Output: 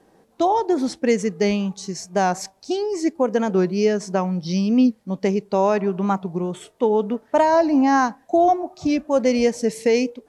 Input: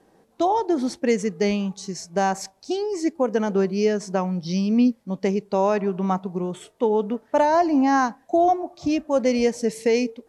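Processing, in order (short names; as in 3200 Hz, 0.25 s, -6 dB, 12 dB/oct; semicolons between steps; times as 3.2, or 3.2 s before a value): record warp 45 rpm, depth 100 cents; gain +2 dB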